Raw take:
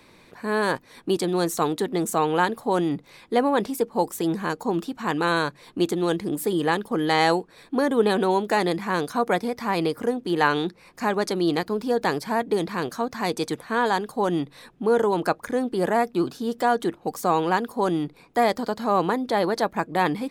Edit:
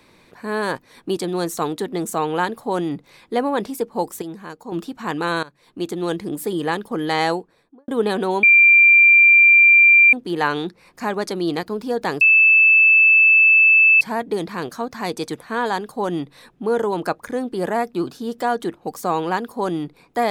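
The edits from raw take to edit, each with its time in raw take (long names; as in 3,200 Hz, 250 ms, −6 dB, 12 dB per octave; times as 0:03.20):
0:04.22–0:04.72: clip gain −8.5 dB
0:05.43–0:06.07: fade in, from −18 dB
0:07.20–0:07.88: fade out and dull
0:08.43–0:10.13: beep over 2,370 Hz −7.5 dBFS
0:12.21: insert tone 2,630 Hz −9 dBFS 1.80 s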